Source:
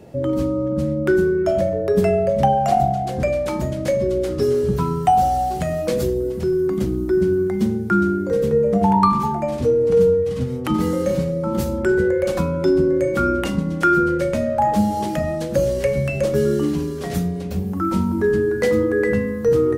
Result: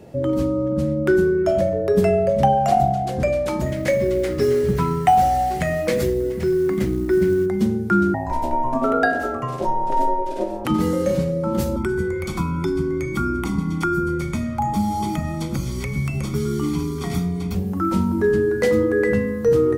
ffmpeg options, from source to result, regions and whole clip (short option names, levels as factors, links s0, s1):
-filter_complex "[0:a]asettb=1/sr,asplit=3[s0][s1][s2];[s0]atrim=end=3.664[s3];[s1]atrim=start=3.66:end=7.46,asetpts=PTS-STARTPTS,afade=t=in:d=0.004:c=qsin,afade=t=out:st=3.796:d=0.004:c=qsin,equalizer=f=2000:w=2.3:g=10.5,bandreject=f=50:t=h:w=6,bandreject=f=100:t=h:w=6,acrusher=bits=8:mode=log:mix=0:aa=0.000001[s4];[s2]atrim=start=7.456[s5];[s3][s4]acrossfade=d=0.004:c1=hsin:c2=qsin[s6];[s6][s5]acrossfade=d=0.004:c1=qsin:c2=hsin,asettb=1/sr,asplit=3[s7][s8][s9];[s7]atrim=end=8.144[s10];[s8]atrim=start=8.14:end=10.65,asetpts=PTS-STARTPTS,afade=t=in:d=0.004:c=qsin,afade=t=out:st=2.506:d=0.004:c=qsin,asubboost=boost=6.5:cutoff=85,aeval=exprs='val(0)*sin(2*PI*460*n/s)':c=same[s11];[s9]atrim=start=10.646[s12];[s10][s11]acrossfade=d=0.004:c1=hsin:c2=qsin[s13];[s13][s12]acrossfade=d=0.004:c1=qsin:c2=hsin,asettb=1/sr,asplit=3[s14][s15][s16];[s14]atrim=end=11.764[s17];[s15]atrim=start=11.76:end=17.55,asetpts=PTS-STARTPTS,afade=t=in:d=0.004:c=qsin,afade=t=out:st=5.786:d=0.004:c=qsin,acrossover=split=110|320|1100|6000[s18][s19][s20][s21][s22];[s18]acompressor=threshold=0.0158:ratio=3[s23];[s19]acompressor=threshold=0.0316:ratio=3[s24];[s20]acompressor=threshold=0.0398:ratio=3[s25];[s21]acompressor=threshold=0.0126:ratio=3[s26];[s22]acompressor=threshold=0.00501:ratio=3[s27];[s23][s24][s25][s26][s27]amix=inputs=5:normalize=0,aecho=1:1:0.9:0.97,atrim=end_sample=255339[s28];[s16]atrim=start=17.546[s29];[s17][s28]acrossfade=d=0.004:c1=hsin:c2=qsin[s30];[s30][s29]acrossfade=d=0.004:c1=qsin:c2=hsin"